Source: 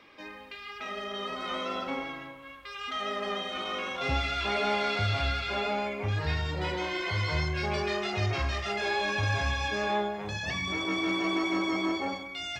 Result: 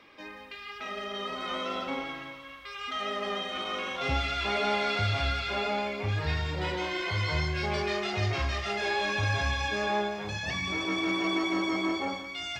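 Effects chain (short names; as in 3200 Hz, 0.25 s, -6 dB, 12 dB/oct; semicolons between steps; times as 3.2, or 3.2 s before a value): thin delay 0.172 s, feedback 72%, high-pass 2000 Hz, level -10 dB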